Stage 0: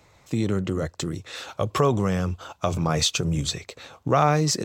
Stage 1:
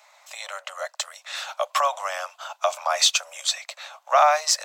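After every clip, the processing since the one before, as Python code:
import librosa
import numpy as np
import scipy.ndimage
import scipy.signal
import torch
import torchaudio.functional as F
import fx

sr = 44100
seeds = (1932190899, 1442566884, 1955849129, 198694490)

y = scipy.signal.sosfilt(scipy.signal.butter(16, 580.0, 'highpass', fs=sr, output='sos'), x)
y = y * librosa.db_to_amplitude(4.5)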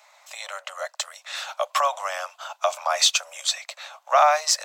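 y = x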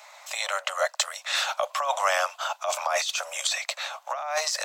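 y = fx.over_compress(x, sr, threshold_db=-27.0, ratio=-1.0)
y = y * librosa.db_to_amplitude(1.5)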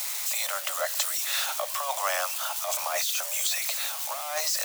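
y = x + 0.5 * 10.0 ** (-18.0 / 20.0) * np.diff(np.sign(x), prepend=np.sign(x[:1]))
y = y * librosa.db_to_amplitude(-5.0)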